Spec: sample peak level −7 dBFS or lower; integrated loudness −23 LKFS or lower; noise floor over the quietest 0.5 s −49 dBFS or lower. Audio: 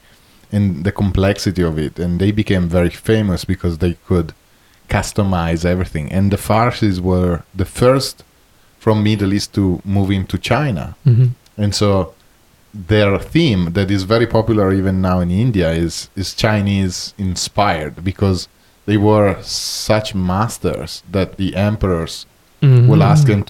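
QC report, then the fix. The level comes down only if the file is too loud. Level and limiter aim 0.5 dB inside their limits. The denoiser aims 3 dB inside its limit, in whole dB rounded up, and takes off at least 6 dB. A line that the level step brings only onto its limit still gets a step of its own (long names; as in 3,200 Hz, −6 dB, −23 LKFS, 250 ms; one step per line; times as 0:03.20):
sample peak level −1.5 dBFS: out of spec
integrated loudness −16.0 LKFS: out of spec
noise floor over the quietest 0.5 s −51 dBFS: in spec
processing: level −7.5 dB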